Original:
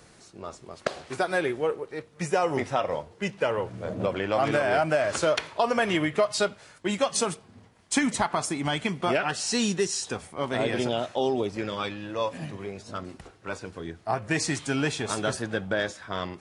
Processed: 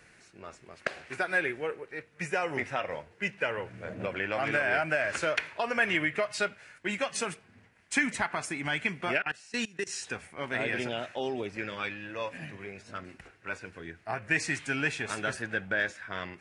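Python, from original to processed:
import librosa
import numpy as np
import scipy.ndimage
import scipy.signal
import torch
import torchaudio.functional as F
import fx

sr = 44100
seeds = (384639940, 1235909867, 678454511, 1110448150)

y = fx.band_shelf(x, sr, hz=2000.0, db=10.5, octaves=1.1)
y = fx.level_steps(y, sr, step_db=23, at=(9.18, 9.87))
y = y * librosa.db_to_amplitude(-7.5)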